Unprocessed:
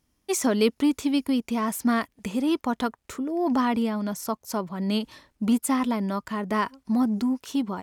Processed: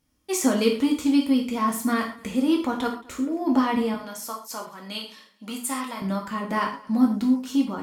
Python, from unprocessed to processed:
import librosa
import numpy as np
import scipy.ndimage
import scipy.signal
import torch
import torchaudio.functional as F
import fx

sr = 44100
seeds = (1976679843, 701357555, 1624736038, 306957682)

y = fx.highpass(x, sr, hz=1100.0, slope=6, at=(3.94, 6.02))
y = fx.echo_feedback(y, sr, ms=224, feedback_pct=30, wet_db=-24.0)
y = fx.rev_gated(y, sr, seeds[0], gate_ms=160, shape='falling', drr_db=-0.5)
y = F.gain(torch.from_numpy(y), -2.0).numpy()